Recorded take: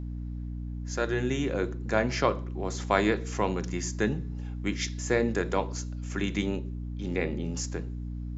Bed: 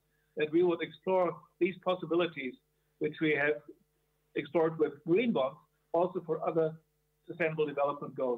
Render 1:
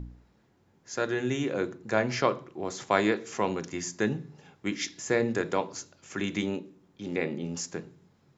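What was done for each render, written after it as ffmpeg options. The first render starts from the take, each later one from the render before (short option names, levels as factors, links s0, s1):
-af "bandreject=f=60:t=h:w=4,bandreject=f=120:t=h:w=4,bandreject=f=180:t=h:w=4,bandreject=f=240:t=h:w=4,bandreject=f=300:t=h:w=4"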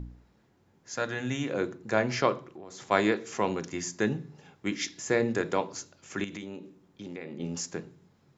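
-filter_complex "[0:a]asettb=1/sr,asplit=3[s0][s1][s2];[s0]atrim=end=0.944[s3];[s1]atrim=start=0.94:end=1.5,asetpts=PTS-STARTPTS,afade=t=in:d=0.004:c=qsin,afade=t=out:st=0.556:d=0.004:c=qsin,equalizer=f=380:w=4.5:g=-13[s4];[s2]atrim=start=1.496[s5];[s3][s4]acrossfade=d=0.004:c1=hsin:c2=qsin[s6];[s6][s5]acrossfade=d=0.004:c1=qsin:c2=hsin,asplit=3[s7][s8][s9];[s7]afade=t=out:st=2.4:d=0.02[s10];[s8]acompressor=threshold=0.00891:ratio=6:attack=3.2:release=140:knee=1:detection=peak,afade=t=in:st=2.4:d=0.02,afade=t=out:st=2.9:d=0.02[s11];[s9]afade=t=in:st=2.9:d=0.02[s12];[s10][s11][s12]amix=inputs=3:normalize=0,asettb=1/sr,asplit=3[s13][s14][s15];[s13]atrim=end=6.244[s16];[s14]atrim=start=6.24:end=7.4,asetpts=PTS-STARTPTS,afade=t=in:d=0.004:c=qsin,afade=t=out:st=1.156:d=0.004:c=qsin,acompressor=threshold=0.0141:ratio=4:attack=3.2:release=140:knee=1:detection=peak[s17];[s15]atrim=start=7.396[s18];[s16][s17]acrossfade=d=0.004:c1=hsin:c2=qsin[s19];[s19][s18]acrossfade=d=0.004:c1=qsin:c2=hsin"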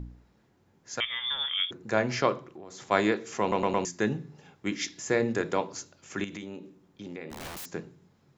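-filter_complex "[0:a]asettb=1/sr,asplit=3[s0][s1][s2];[s0]atrim=end=1.004[s3];[s1]atrim=start=1:end=1.71,asetpts=PTS-STARTPTS,afade=t=in:d=0.004:c=qsin,afade=t=out:st=0.706:d=0.004:c=qsin,lowpass=f=3100:t=q:w=0.5098,lowpass=f=3100:t=q:w=0.6013,lowpass=f=3100:t=q:w=0.9,lowpass=f=3100:t=q:w=2.563,afreqshift=-3700[s4];[s2]atrim=start=1.706[s5];[s3][s4]acrossfade=d=0.004:c1=hsin:c2=qsin[s6];[s6][s5]acrossfade=d=0.004:c1=qsin:c2=hsin,asplit=3[s7][s8][s9];[s7]afade=t=out:st=7.3:d=0.02[s10];[s8]aeval=exprs='(mod(56.2*val(0)+1,2)-1)/56.2':c=same,afade=t=in:st=7.3:d=0.02,afade=t=out:st=7.7:d=0.02[s11];[s9]afade=t=in:st=7.7:d=0.02[s12];[s10][s11][s12]amix=inputs=3:normalize=0,asplit=5[s13][s14][s15][s16][s17];[s13]atrim=end=3.522[s18];[s14]atrim=start=3.408:end=3.522[s19];[s15]atrim=start=3.408:end=3.522[s20];[s16]atrim=start=3.408:end=3.522[s21];[s17]atrim=start=3.848[s22];[s18][s19]acrossfade=d=0.004:c1=hsin:c2=hsin[s23];[s23][s20]acrossfade=d=0.004:c1=hsin:c2=hsin[s24];[s24][s21]acrossfade=d=0.004:c1=hsin:c2=hsin[s25];[s25][s22]acrossfade=d=0.004:c1=hsin:c2=hsin"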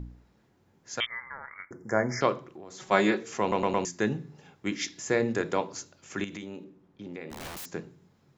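-filter_complex "[0:a]asettb=1/sr,asplit=3[s0][s1][s2];[s0]atrim=end=1.064[s3];[s1]atrim=start=1.06:end=2.21,asetpts=PTS-STARTPTS,afade=t=in:d=0.004:c=qsin,afade=t=out:st=1.146:d=0.004:c=qsin,asuperstop=centerf=3300:order=20:qfactor=1.2[s4];[s2]atrim=start=2.206[s5];[s3][s4]acrossfade=d=0.004:c1=hsin:c2=qsin[s6];[s6][s5]acrossfade=d=0.004:c1=qsin:c2=hsin,asettb=1/sr,asplit=3[s7][s8][s9];[s7]atrim=end=2.794[s10];[s8]atrim=start=2.79:end=3.23,asetpts=PTS-STARTPTS,afade=t=in:d=0.004:c=qsin,afade=t=out:st=0.436:d=0.004:c=qsin,aecho=1:1:5.4:0.63,atrim=end_sample=19404[s11];[s9]atrim=start=3.226[s12];[s10][s11]acrossfade=d=0.004:c1=hsin:c2=qsin[s13];[s13][s12]acrossfade=d=0.004:c1=qsin:c2=hsin,asettb=1/sr,asplit=3[s14][s15][s16];[s14]atrim=end=6.644[s17];[s15]atrim=start=6.64:end=7.14,asetpts=PTS-STARTPTS,afade=t=in:d=0.004:c=qsin,afade=t=out:st=0.496:d=0.004:c=qsin,lowpass=f=2200:p=1[s18];[s16]atrim=start=7.136[s19];[s17][s18]acrossfade=d=0.004:c1=hsin:c2=qsin[s20];[s20][s19]acrossfade=d=0.004:c1=qsin:c2=hsin"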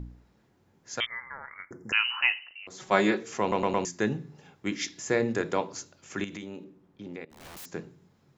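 -filter_complex "[0:a]asettb=1/sr,asplit=3[s0][s1][s2];[s0]atrim=end=1.924[s3];[s1]atrim=start=1.92:end=2.67,asetpts=PTS-STARTPTS,afade=t=in:d=0.004:c=qsin,afade=t=out:st=0.746:d=0.004:c=qsin,lowpass=f=2600:t=q:w=0.5098,lowpass=f=2600:t=q:w=0.6013,lowpass=f=2600:t=q:w=0.9,lowpass=f=2600:t=q:w=2.563,afreqshift=-3100[s4];[s2]atrim=start=2.666[s5];[s3][s4]acrossfade=d=0.004:c1=hsin:c2=qsin[s6];[s6][s5]acrossfade=d=0.004:c1=qsin:c2=hsin,asplit=2[s7][s8];[s7]atrim=end=7.25,asetpts=PTS-STARTPTS,afade=t=out:st=7.246:d=0.004:c=hsin:silence=0.105925[s9];[s8]atrim=start=7.25,asetpts=PTS-STARTPTS,afade=t=in:d=0.56:silence=0.105925[s10];[s9][s10]concat=n=2:v=0:a=1"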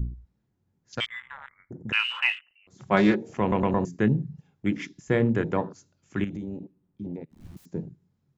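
-af "afwtdn=0.0126,bass=f=250:g=12,treble=f=4000:g=2"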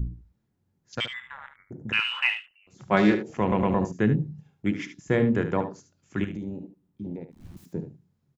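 -af "aecho=1:1:73:0.299"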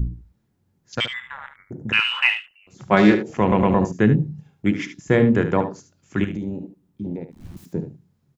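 -af "volume=2,alimiter=limit=0.891:level=0:latency=1"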